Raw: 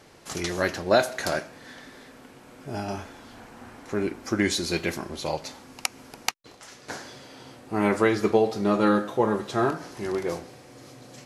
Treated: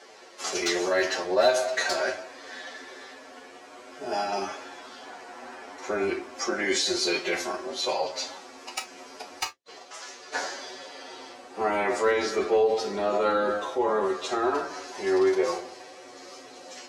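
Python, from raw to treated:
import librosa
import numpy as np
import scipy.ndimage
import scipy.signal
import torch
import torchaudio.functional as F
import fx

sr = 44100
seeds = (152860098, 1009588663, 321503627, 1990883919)

p1 = fx.octave_divider(x, sr, octaves=2, level_db=1.0)
p2 = scipy.signal.sosfilt(scipy.signal.cheby1(2, 1.0, [480.0, 6600.0], 'bandpass', fs=sr, output='sos'), p1)
p3 = fx.over_compress(p2, sr, threshold_db=-30.0, ratio=-0.5)
p4 = p2 + F.gain(torch.from_numpy(p3), -0.5).numpy()
p5 = np.clip(p4, -10.0 ** (-12.5 / 20.0), 10.0 ** (-12.5 / 20.0))
p6 = fx.stretch_vocoder(p5, sr, factor=1.5)
p7 = p6 + fx.room_early_taps(p6, sr, ms=(11, 32), db=(-5.5, -13.5), dry=0)
p8 = fx.rev_gated(p7, sr, seeds[0], gate_ms=80, shape='falling', drr_db=6.0)
y = F.gain(torch.from_numpy(p8), -4.0).numpy()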